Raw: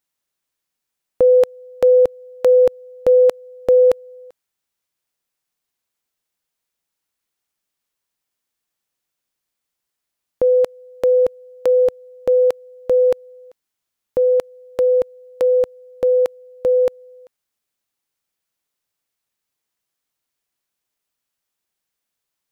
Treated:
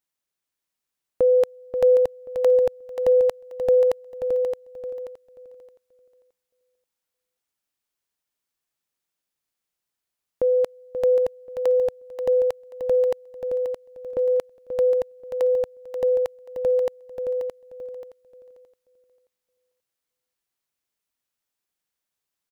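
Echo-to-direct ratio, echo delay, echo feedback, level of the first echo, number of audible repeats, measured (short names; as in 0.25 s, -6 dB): -4.5 dB, 0.533 s, no steady repeat, -8.5 dB, 7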